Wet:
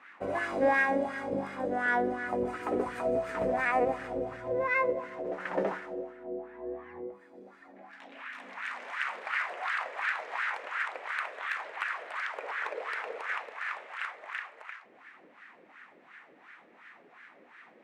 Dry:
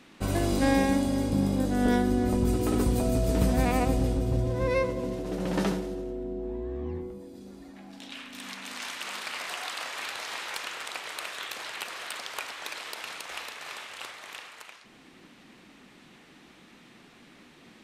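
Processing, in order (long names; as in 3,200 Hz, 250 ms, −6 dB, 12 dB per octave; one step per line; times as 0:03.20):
0:12.43–0:13.37: parametric band 450 Hz +13.5 dB 0.75 octaves
LFO wah 2.8 Hz 490–1,600 Hz, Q 3.2
graphic EQ with 10 bands 2,000 Hz +10 dB, 4,000 Hz −3 dB, 8,000 Hz +4 dB
level +6 dB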